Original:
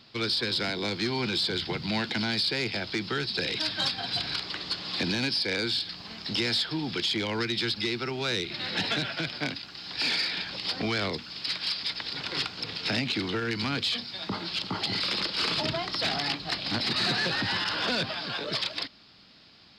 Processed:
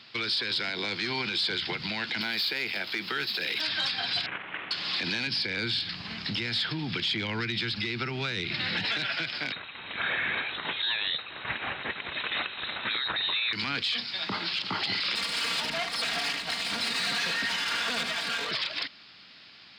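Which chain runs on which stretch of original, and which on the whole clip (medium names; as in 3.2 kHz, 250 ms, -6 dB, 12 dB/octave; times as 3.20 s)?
2.21–3.61 s: median filter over 5 samples + high-pass 170 Hz
4.26–4.71 s: CVSD coder 16 kbps + bass shelf 170 Hz -6 dB
5.27–8.85 s: tone controls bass +12 dB, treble -3 dB + compression 3:1, threshold -27 dBFS
9.52–13.53 s: distance through air 68 m + frequency inversion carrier 4 kHz
15.15–18.51 s: comb filter that takes the minimum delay 4.3 ms + delay 76 ms -9 dB
whole clip: high-pass 80 Hz; peaking EQ 2.2 kHz +11.5 dB 2.3 oct; peak limiter -17 dBFS; trim -3.5 dB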